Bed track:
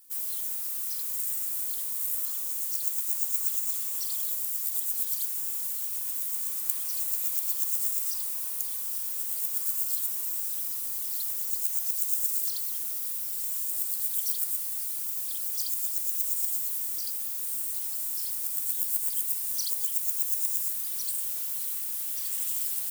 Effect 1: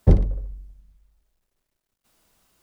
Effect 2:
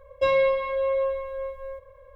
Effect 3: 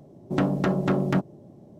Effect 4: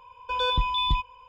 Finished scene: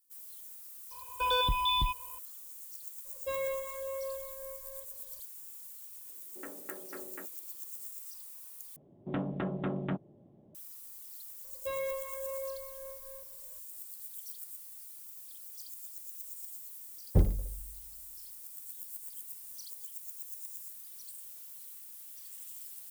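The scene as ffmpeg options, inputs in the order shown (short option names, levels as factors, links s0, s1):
-filter_complex "[2:a]asplit=2[s0][s1];[3:a]asplit=2[s2][s3];[0:a]volume=0.158[s4];[4:a]alimiter=limit=0.112:level=0:latency=1:release=195[s5];[s2]highpass=f=340:w=0.5412,highpass=f=340:w=1.3066,equalizer=f=690:t=q:w=4:g=-9,equalizer=f=1000:t=q:w=4:g=-6,equalizer=f=1800:t=q:w=4:g=7,lowpass=f=2600:w=0.5412,lowpass=f=2600:w=1.3066[s6];[s3]aresample=8000,aresample=44100[s7];[s4]asplit=2[s8][s9];[s8]atrim=end=8.764[s10];[s7]atrim=end=1.79,asetpts=PTS-STARTPTS,volume=0.282[s11];[s9]atrim=start=10.546[s12];[s5]atrim=end=1.28,asetpts=PTS-STARTPTS,volume=0.841,afade=t=in:d=0.004:c=hsin,afade=t=out:st=1.276:d=0.004:c=hsin,adelay=910[s13];[s0]atrim=end=2.15,asetpts=PTS-STARTPTS,volume=0.2,afade=t=in:d=0.004:c=hsin,afade=t=out:st=2.146:d=0.004:c=hsin,adelay=134505S[s14];[s6]atrim=end=1.79,asetpts=PTS-STARTPTS,volume=0.133,afade=t=in:d=0.004:c=hsin,afade=t=out:st=1.786:d=0.004:c=hsin,adelay=6050[s15];[s1]atrim=end=2.15,asetpts=PTS-STARTPTS,volume=0.178,afade=t=in:d=0.004:c=hsin,afade=t=out:st=2.146:d=0.004:c=hsin,adelay=11440[s16];[1:a]atrim=end=2.62,asetpts=PTS-STARTPTS,volume=0.335,afade=t=in:d=0.004:c=hsin,afade=t=out:st=2.616:d=0.004:c=hsin,adelay=17080[s17];[s10][s11]acrossfade=d=0.004:c1=hsin:c2=hsin[s18];[s18][s12]acrossfade=d=0.004:c1=hsin:c2=hsin[s19];[s19][s13][s14][s15][s16][s17]amix=inputs=6:normalize=0"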